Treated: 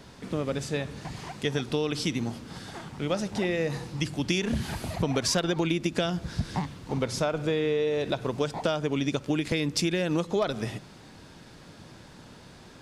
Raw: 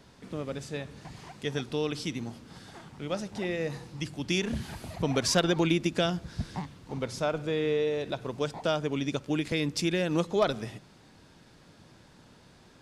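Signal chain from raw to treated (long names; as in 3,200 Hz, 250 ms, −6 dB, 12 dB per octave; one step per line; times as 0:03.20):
downward compressor, threshold −30 dBFS, peak gain reduction 10.5 dB
level +7 dB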